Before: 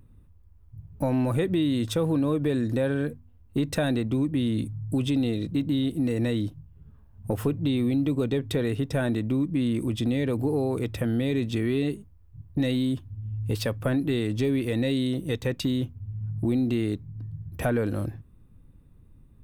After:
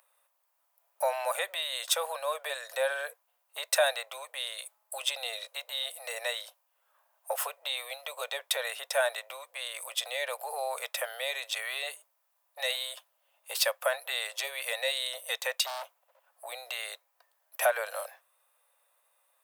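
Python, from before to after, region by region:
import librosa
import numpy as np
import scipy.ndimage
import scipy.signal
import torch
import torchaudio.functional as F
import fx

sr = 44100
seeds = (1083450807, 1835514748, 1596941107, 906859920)

y = fx.chain(x, sr, fx.highpass(hz=91.0, slope=6),
    fx.clip_hard(threshold_db=-33.5),
    fx.dynamic_eq(hz=1000.0, q=0.93, threshold_db=-52.0, ratio=4.0, max_db=5), at=(15.66, 16.2))
y = scipy.signal.sosfilt(scipy.signal.butter(12, 560.0, 'highpass', fs=sr, output='sos'), y)
y = fx.high_shelf(y, sr, hz=6100.0, db=8.5)
y = y * 10.0 ** (4.0 / 20.0)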